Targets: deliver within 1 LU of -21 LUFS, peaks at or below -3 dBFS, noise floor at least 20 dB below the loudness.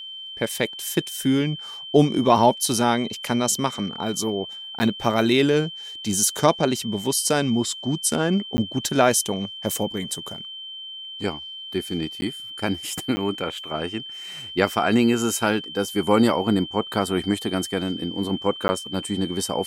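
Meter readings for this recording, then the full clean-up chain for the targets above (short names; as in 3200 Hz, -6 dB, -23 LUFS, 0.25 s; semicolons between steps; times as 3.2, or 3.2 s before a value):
dropouts 5; longest dropout 10 ms; steady tone 3100 Hz; tone level -34 dBFS; loudness -23.0 LUFS; peak -3.0 dBFS; loudness target -21.0 LUFS
-> interpolate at 4.79/8.57/12.21/13.16/18.68, 10 ms; notch 3100 Hz, Q 30; gain +2 dB; limiter -3 dBFS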